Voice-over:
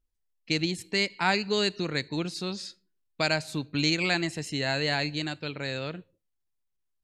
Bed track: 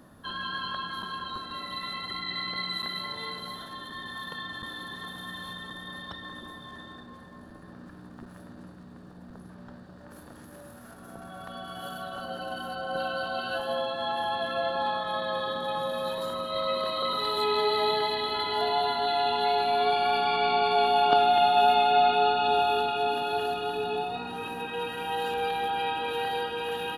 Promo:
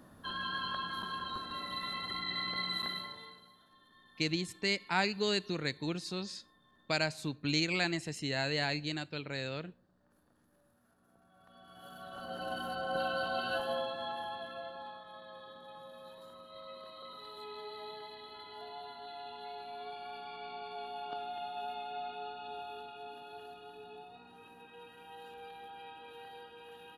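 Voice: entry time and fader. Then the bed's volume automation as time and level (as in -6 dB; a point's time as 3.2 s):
3.70 s, -5.5 dB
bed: 2.9 s -3.5 dB
3.53 s -23.5 dB
11.3 s -23.5 dB
12.48 s -3 dB
13.55 s -3 dB
15.06 s -20 dB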